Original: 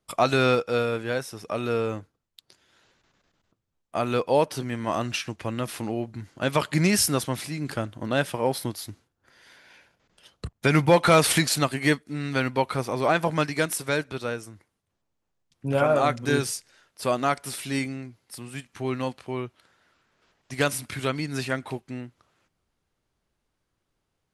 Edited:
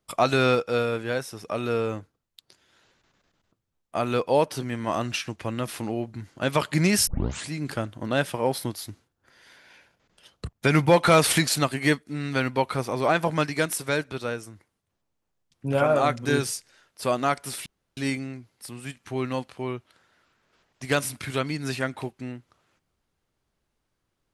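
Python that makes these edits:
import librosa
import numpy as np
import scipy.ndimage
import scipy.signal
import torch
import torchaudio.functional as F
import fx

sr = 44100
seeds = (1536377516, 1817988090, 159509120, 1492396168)

y = fx.edit(x, sr, fx.tape_start(start_s=7.07, length_s=0.42),
    fx.insert_room_tone(at_s=17.66, length_s=0.31), tone=tone)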